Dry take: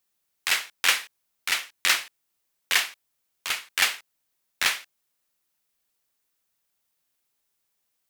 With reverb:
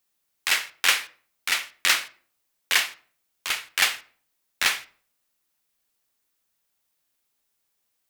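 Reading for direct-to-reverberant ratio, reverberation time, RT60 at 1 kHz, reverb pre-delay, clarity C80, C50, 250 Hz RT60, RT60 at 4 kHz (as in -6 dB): 11.0 dB, 0.50 s, 0.45 s, 3 ms, 23.0 dB, 18.5 dB, 0.60 s, 0.35 s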